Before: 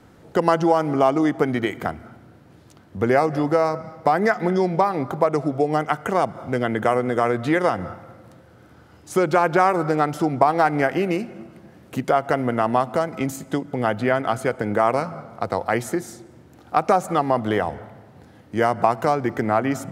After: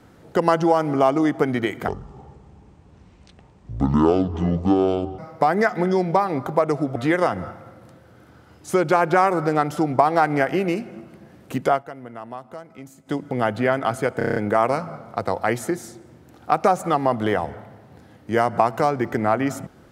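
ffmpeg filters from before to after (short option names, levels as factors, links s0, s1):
-filter_complex "[0:a]asplit=12[s0][s1][s2][s3][s4][s5][s6][s7][s8][s9][s10][s11];[s0]atrim=end=1.884[s12];[s1]atrim=start=1.88:end=3.83,asetpts=PTS-STARTPTS,asetrate=26019,aresample=44100,atrim=end_sample=145754,asetpts=PTS-STARTPTS[s13];[s2]atrim=start=3.826:end=5.602[s14];[s3]atrim=start=7.378:end=12.26,asetpts=PTS-STARTPTS,afade=t=out:st=4.752:d=0.13:c=qsin:silence=0.16788[s15];[s4]atrim=start=12.26:end=13.48,asetpts=PTS-STARTPTS,volume=0.168[s16];[s5]atrim=start=13.48:end=14.632,asetpts=PTS-STARTPTS,afade=t=in:d=0.13:c=qsin:silence=0.16788[s17];[s6]atrim=start=14.598:end=14.632[s18];[s7]atrim=start=14.598:end=14.632[s19];[s8]atrim=start=14.598:end=14.632[s20];[s9]atrim=start=14.598:end=14.632[s21];[s10]atrim=start=14.598:end=14.632[s22];[s11]atrim=start=14.598[s23];[s12][s13]acrossfade=d=0.004:c1=hsin:c2=hsin[s24];[s24][s14]acrossfade=d=0.004:c1=hsin:c2=hsin[s25];[s15][s16][s17]concat=n=3:v=0:a=1[s26];[s25][s26]acrossfade=d=0.004:c1=hsin:c2=hsin[s27];[s27][s18]acrossfade=d=0.004:c1=hsin:c2=hsin[s28];[s28][s19]acrossfade=d=0.004:c1=hsin:c2=hsin[s29];[s29][s20]acrossfade=d=0.004:c1=hsin:c2=hsin[s30];[s30][s21]acrossfade=d=0.004:c1=hsin:c2=hsin[s31];[s31][s22]acrossfade=d=0.004:c1=hsin:c2=hsin[s32];[s32][s23]acrossfade=d=0.004:c1=hsin:c2=hsin"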